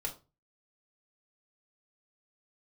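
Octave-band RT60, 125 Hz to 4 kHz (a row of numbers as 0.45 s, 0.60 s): 0.50 s, 0.40 s, 0.30 s, 0.30 s, 0.25 s, 0.25 s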